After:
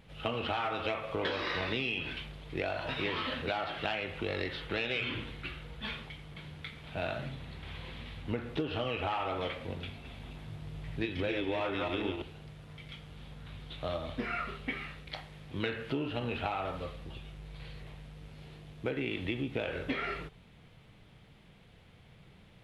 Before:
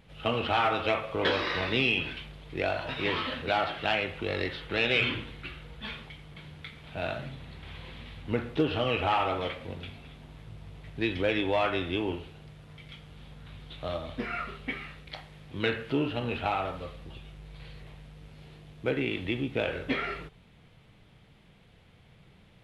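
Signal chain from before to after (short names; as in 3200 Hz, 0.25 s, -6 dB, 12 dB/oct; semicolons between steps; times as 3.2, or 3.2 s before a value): 9.91–12.22 regenerating reverse delay 0.141 s, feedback 49%, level -3 dB; compressor 6:1, threshold -30 dBFS, peak gain reduction 9.5 dB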